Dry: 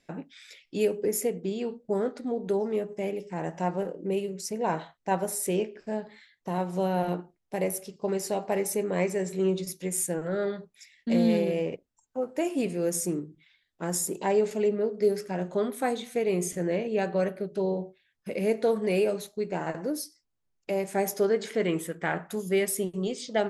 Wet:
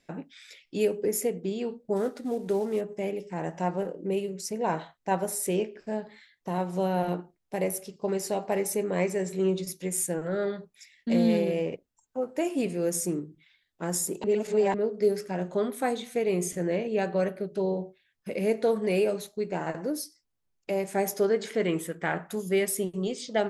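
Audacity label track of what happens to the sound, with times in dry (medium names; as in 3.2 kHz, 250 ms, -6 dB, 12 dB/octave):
1.960000	2.810000	CVSD coder 64 kbps
14.240000	14.740000	reverse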